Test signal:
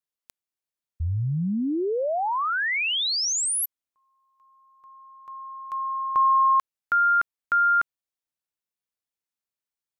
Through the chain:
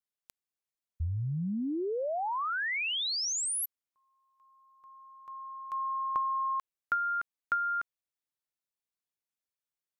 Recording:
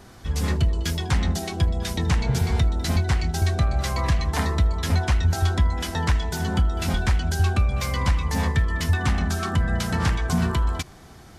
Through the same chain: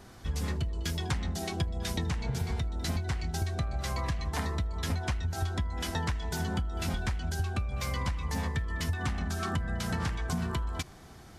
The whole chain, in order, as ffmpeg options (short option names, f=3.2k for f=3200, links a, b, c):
-af "acompressor=threshold=-28dB:ratio=6:attack=82:release=158:knee=1:detection=peak,volume=-4.5dB"